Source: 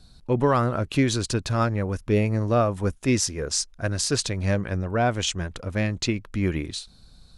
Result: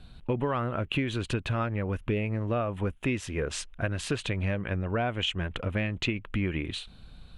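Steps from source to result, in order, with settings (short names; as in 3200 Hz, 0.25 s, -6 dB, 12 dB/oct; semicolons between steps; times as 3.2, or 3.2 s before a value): resonant high shelf 3900 Hz -10 dB, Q 3; compressor, threshold -29 dBFS, peak gain reduction 13 dB; gain +3 dB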